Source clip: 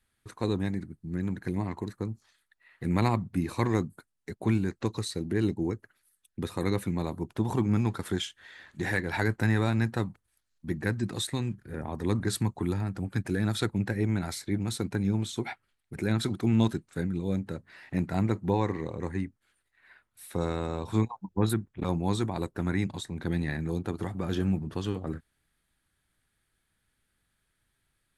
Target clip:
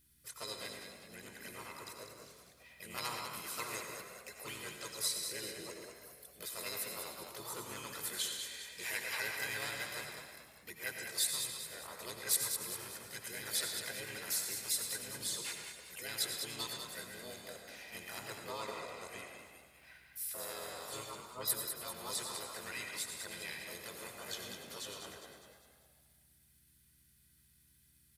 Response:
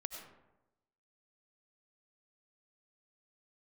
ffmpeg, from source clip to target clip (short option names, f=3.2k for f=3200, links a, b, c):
-filter_complex "[0:a]aderivative,aecho=1:1:2:0.64,asplit=2[a][b];[b]acompressor=threshold=-57dB:ratio=5,volume=0dB[c];[a][c]amix=inputs=2:normalize=0,asplit=7[d][e][f][g][h][i][j];[e]adelay=200,afreqshift=38,volume=-7dB[k];[f]adelay=400,afreqshift=76,volume=-13.4dB[l];[g]adelay=600,afreqshift=114,volume=-19.8dB[m];[h]adelay=800,afreqshift=152,volume=-26.1dB[n];[i]adelay=1000,afreqshift=190,volume=-32.5dB[o];[j]adelay=1200,afreqshift=228,volume=-38.9dB[p];[d][k][l][m][n][o][p]amix=inputs=7:normalize=0,aeval=exprs='val(0)+0.000158*(sin(2*PI*60*n/s)+sin(2*PI*2*60*n/s)/2+sin(2*PI*3*60*n/s)/3+sin(2*PI*4*60*n/s)/4+sin(2*PI*5*60*n/s)/5)':c=same[q];[1:a]atrim=start_sample=2205[r];[q][r]afir=irnorm=-1:irlink=0,asplit=3[s][t][u];[t]asetrate=22050,aresample=44100,atempo=2,volume=-17dB[v];[u]asetrate=55563,aresample=44100,atempo=0.793701,volume=-1dB[w];[s][v][w]amix=inputs=3:normalize=0,volume=2.5dB"